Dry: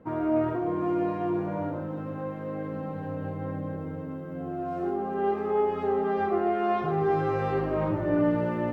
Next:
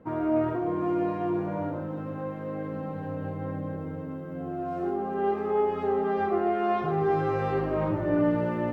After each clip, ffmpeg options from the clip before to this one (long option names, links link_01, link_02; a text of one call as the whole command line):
ffmpeg -i in.wav -af anull out.wav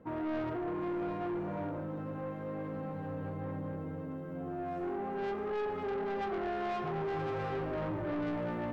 ffmpeg -i in.wav -af "asoftclip=type=tanh:threshold=-28.5dB,volume=-3.5dB" out.wav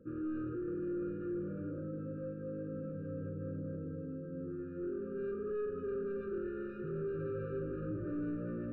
ffmpeg -i in.wav -af "lowpass=1100,afftfilt=real='re*eq(mod(floor(b*sr/1024/590),2),0)':imag='im*eq(mod(floor(b*sr/1024/590),2),0)':win_size=1024:overlap=0.75,volume=-1.5dB" out.wav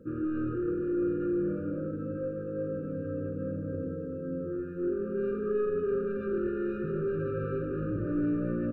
ffmpeg -i in.wav -af "aecho=1:1:85|157:0.376|0.376,volume=7dB" out.wav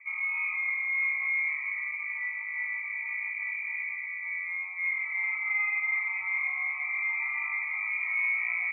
ffmpeg -i in.wav -af "lowpass=frequency=2100:width_type=q:width=0.5098,lowpass=frequency=2100:width_type=q:width=0.6013,lowpass=frequency=2100:width_type=q:width=0.9,lowpass=frequency=2100:width_type=q:width=2.563,afreqshift=-2500" out.wav